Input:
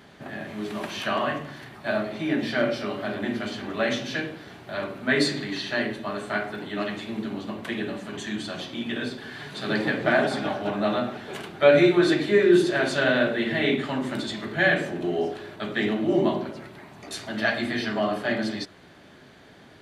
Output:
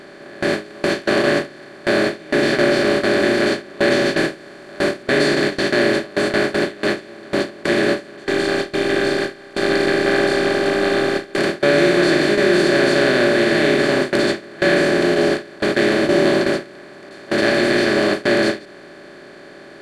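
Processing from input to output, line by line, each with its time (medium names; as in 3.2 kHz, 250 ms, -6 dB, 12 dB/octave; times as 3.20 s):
4.17–5.03 s: one-bit delta coder 64 kbps, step -42 dBFS
8.24–11.38 s: robot voice 398 Hz
whole clip: spectral levelling over time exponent 0.2; gate with hold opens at -3 dBFS; dynamic bell 1 kHz, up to -4 dB, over -30 dBFS, Q 0.99; trim -2 dB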